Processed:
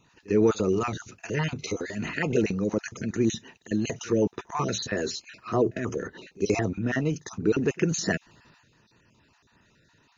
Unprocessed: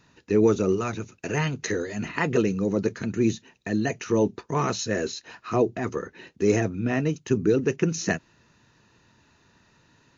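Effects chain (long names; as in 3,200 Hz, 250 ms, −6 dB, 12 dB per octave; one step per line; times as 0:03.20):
time-frequency cells dropped at random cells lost 27%
transient designer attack +1 dB, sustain +7 dB
echo ahead of the sound 51 ms −23 dB
level −2 dB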